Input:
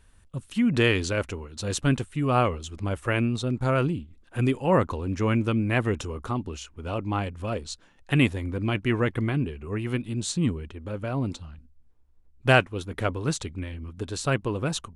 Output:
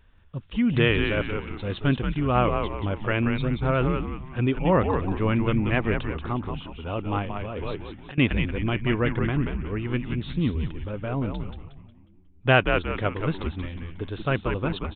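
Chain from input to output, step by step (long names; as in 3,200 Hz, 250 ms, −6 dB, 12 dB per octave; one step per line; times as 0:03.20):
downsampling to 8,000 Hz
echo with shifted repeats 181 ms, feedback 40%, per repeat −93 Hz, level −5 dB
0:07.22–0:08.18: compressor whose output falls as the input rises −32 dBFS, ratio −1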